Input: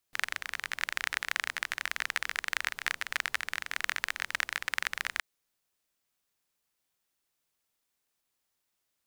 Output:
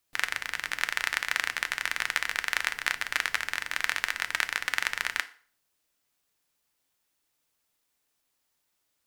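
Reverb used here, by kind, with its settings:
feedback delay network reverb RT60 0.46 s, low-frequency decay 0.8×, high-frequency decay 0.85×, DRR 10 dB
level +3.5 dB

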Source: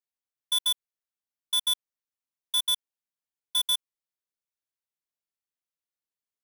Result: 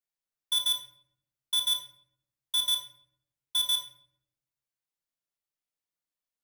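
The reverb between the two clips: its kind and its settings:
rectangular room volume 120 cubic metres, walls mixed, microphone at 0.55 metres
level −2 dB

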